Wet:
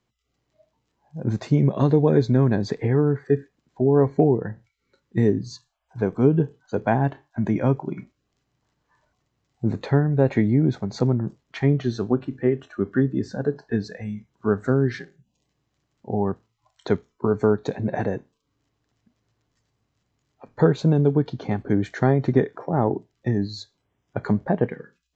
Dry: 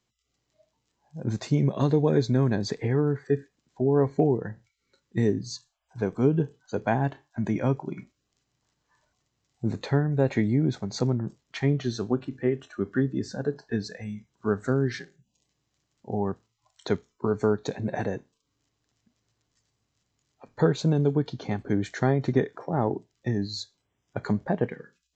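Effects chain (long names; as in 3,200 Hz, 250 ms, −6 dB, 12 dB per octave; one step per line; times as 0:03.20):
high-shelf EQ 3,700 Hz −12 dB
level +4.5 dB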